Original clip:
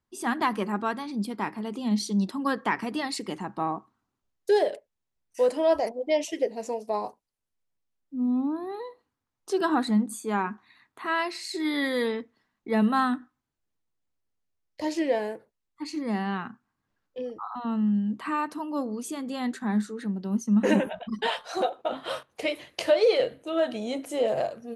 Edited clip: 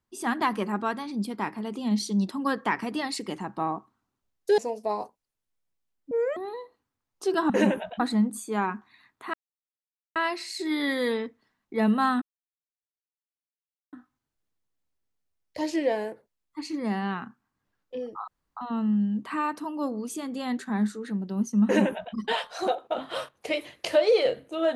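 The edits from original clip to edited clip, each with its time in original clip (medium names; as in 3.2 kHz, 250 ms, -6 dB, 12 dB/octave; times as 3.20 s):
4.58–6.62 s: delete
8.15–8.63 s: speed 187%
11.10 s: insert silence 0.82 s
13.16 s: insert silence 1.71 s
17.51 s: insert room tone 0.29 s
20.59–21.09 s: copy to 9.76 s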